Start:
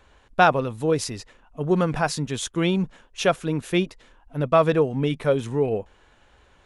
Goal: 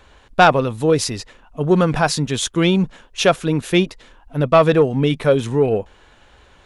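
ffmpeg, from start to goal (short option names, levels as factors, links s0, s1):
-af "acontrast=68,equalizer=f=3900:w=1.5:g=2.5"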